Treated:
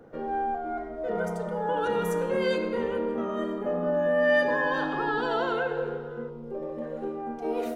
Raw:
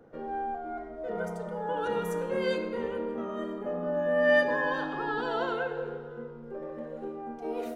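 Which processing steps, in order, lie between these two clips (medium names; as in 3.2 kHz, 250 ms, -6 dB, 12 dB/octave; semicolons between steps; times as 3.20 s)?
6.29–6.82 s: peaking EQ 1.6 kHz -10 dB 0.75 oct; in parallel at +3 dB: peak limiter -24 dBFS, peak gain reduction 11.5 dB; on the sum: trim -3 dB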